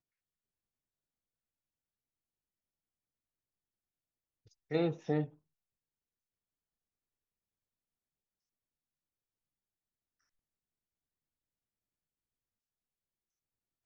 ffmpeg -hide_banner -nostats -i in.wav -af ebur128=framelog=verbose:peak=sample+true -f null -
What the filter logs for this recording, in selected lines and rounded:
Integrated loudness:
  I:         -35.1 LUFS
  Threshold: -45.5 LUFS
Loudness range:
  LRA:         3.9 LU
  Threshold: -61.0 LUFS
  LRA low:   -44.2 LUFS
  LRA high:  -40.3 LUFS
Sample peak:
  Peak:      -18.1 dBFS
True peak:
  Peak:      -18.1 dBFS